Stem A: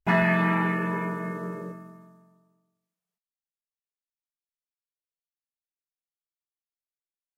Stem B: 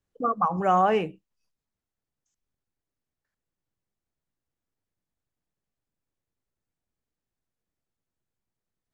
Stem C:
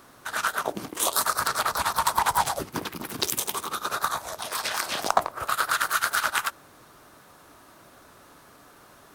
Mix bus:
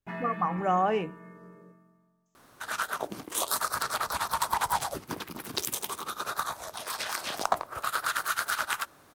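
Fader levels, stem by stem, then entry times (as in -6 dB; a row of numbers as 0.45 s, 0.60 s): -16.5 dB, -4.5 dB, -5.0 dB; 0.00 s, 0.00 s, 2.35 s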